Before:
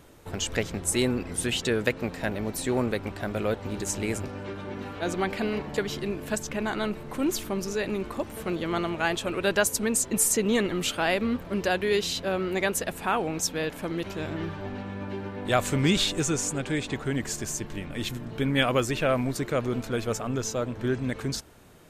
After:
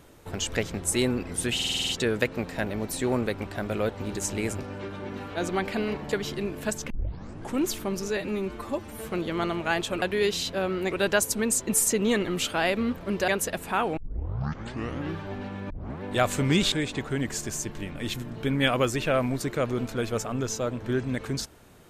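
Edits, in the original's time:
1.54 s: stutter 0.05 s, 8 plays
6.55 s: tape start 0.69 s
7.82–8.44 s: stretch 1.5×
11.72–12.62 s: move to 9.36 s
13.31 s: tape start 1.17 s
15.04 s: tape start 0.32 s
16.06–16.67 s: delete

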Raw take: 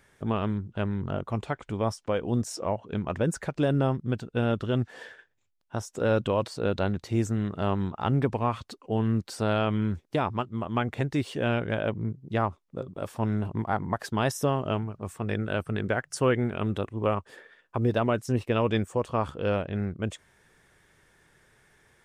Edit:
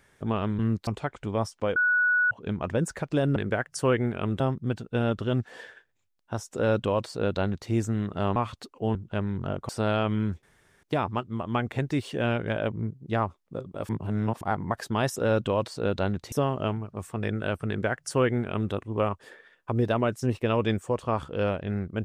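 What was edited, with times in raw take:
0.59–1.33 s: swap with 9.03–9.31 s
2.22–2.77 s: bleep 1.47 kHz -19.5 dBFS
5.96–7.12 s: copy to 14.38 s
7.78–8.44 s: delete
10.05 s: insert room tone 0.40 s
13.11–13.63 s: reverse
15.74–16.78 s: copy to 3.82 s

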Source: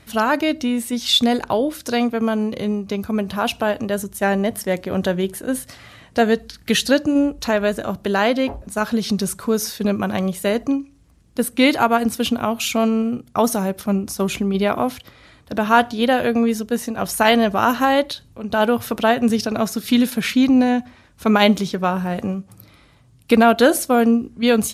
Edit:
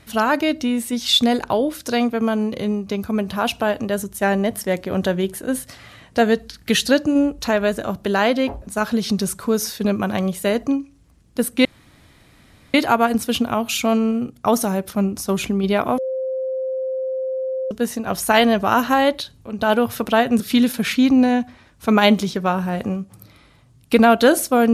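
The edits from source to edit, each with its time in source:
11.65 s: insert room tone 1.09 s
14.89–16.62 s: bleep 523 Hz -21 dBFS
19.31–19.78 s: delete

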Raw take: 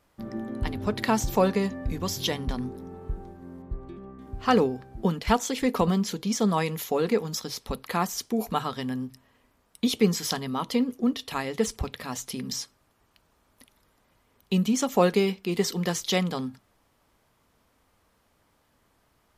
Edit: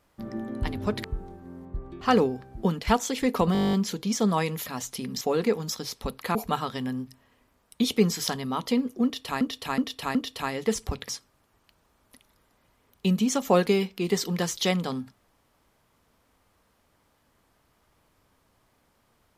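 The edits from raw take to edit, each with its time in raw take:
1.04–3.01 s: delete
3.98–4.41 s: delete
5.93 s: stutter 0.02 s, 11 plays
8.00–8.38 s: delete
11.07–11.44 s: loop, 4 plays
12.01–12.56 s: move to 6.86 s

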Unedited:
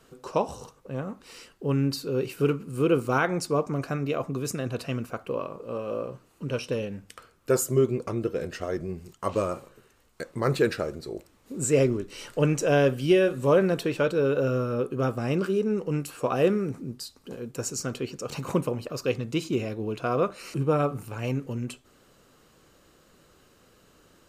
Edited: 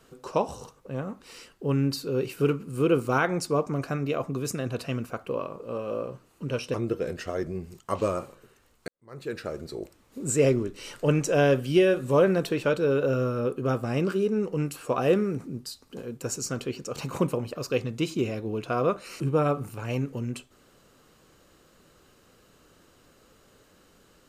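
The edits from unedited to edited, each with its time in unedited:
6.74–8.08 s: delete
10.22–10.99 s: fade in quadratic

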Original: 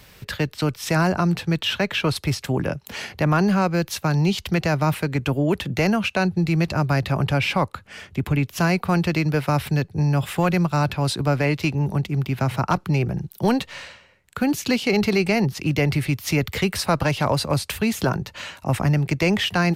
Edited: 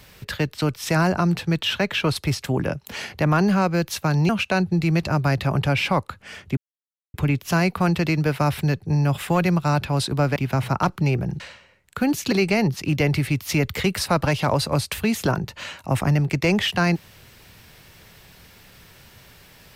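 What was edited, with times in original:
4.29–5.94 s: delete
8.22 s: insert silence 0.57 s
11.44–12.24 s: delete
13.28–13.80 s: delete
14.72–15.10 s: delete

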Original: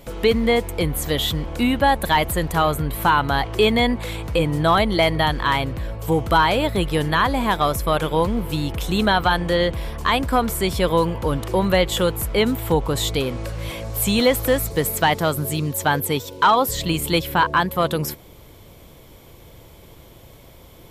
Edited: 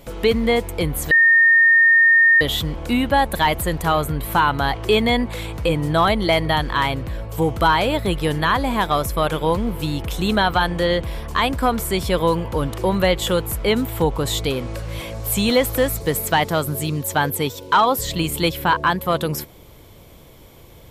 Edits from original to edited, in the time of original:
1.11 s: add tone 1.83 kHz -9.5 dBFS 1.30 s

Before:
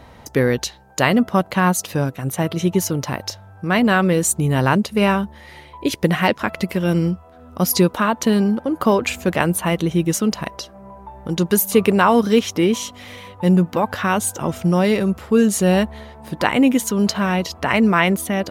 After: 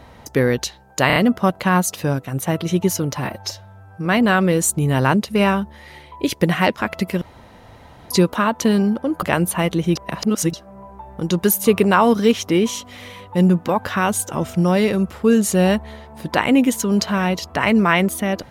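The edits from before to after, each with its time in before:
1.07 s: stutter 0.03 s, 4 plays
3.08–3.67 s: stretch 1.5×
6.83–7.72 s: room tone
8.84–9.30 s: delete
10.03–10.61 s: reverse

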